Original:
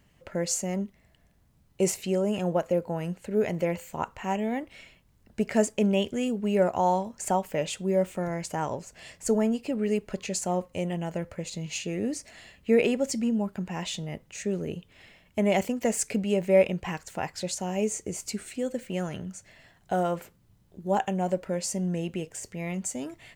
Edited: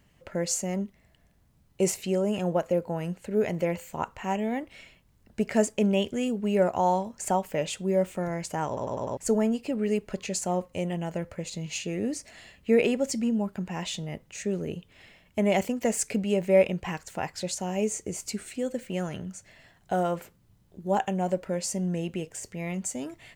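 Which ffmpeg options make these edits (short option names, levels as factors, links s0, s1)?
-filter_complex "[0:a]asplit=6[s0][s1][s2][s3][s4][s5];[s0]atrim=end=8.772[s6];[s1]atrim=start=8.668:end=8.772[s7];[s2]atrim=start=8.668:end=8.772[s8];[s3]atrim=start=8.668:end=8.772[s9];[s4]atrim=start=8.668:end=8.772[s10];[s5]atrim=start=9.168[s11];[s6][s7]acrossfade=d=0.004:c1=hsin:c2=hsin[s12];[s12][s8]acrossfade=d=0.004:c1=hsin:c2=hsin[s13];[s13][s9]acrossfade=d=0.004:c1=hsin:c2=hsin[s14];[s14][s10]acrossfade=d=0.004:c1=hsin:c2=hsin[s15];[s15][s11]acrossfade=d=0.004:c1=hsin:c2=hsin"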